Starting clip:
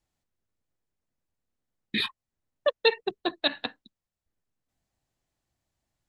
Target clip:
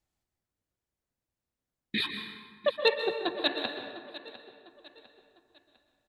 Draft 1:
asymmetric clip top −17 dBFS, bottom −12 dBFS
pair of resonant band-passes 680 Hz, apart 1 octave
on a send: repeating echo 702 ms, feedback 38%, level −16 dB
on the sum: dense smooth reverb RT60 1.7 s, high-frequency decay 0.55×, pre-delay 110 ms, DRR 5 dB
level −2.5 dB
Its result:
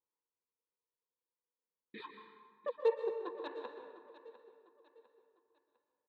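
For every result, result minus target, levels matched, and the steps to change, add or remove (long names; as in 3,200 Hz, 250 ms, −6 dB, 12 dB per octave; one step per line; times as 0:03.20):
asymmetric clip: distortion +19 dB; 500 Hz band +2.5 dB
change: asymmetric clip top −8 dBFS, bottom −12 dBFS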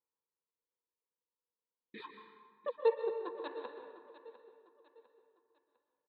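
500 Hz band +2.0 dB
remove: pair of resonant band-passes 680 Hz, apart 1 octave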